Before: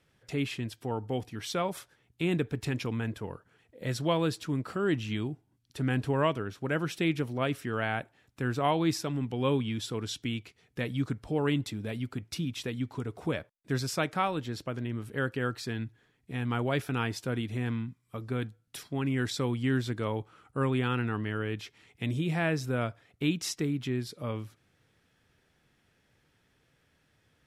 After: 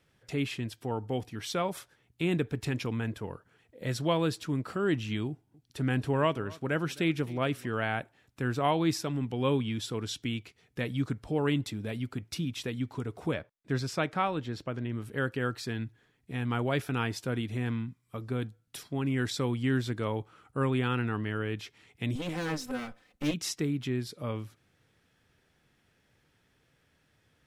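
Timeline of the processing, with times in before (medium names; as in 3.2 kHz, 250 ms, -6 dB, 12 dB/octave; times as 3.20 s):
5.28–7.67 s: delay 260 ms -21.5 dB
13.34–14.92 s: treble shelf 7.4 kHz -12 dB
18.28–19.09 s: dynamic bell 1.9 kHz, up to -4 dB, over -50 dBFS, Q 1.2
22.15–23.34 s: comb filter that takes the minimum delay 3.9 ms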